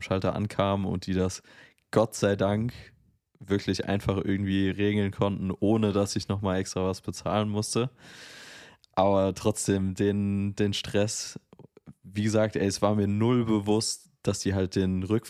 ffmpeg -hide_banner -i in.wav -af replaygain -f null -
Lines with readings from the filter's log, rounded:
track_gain = +8.0 dB
track_peak = 0.236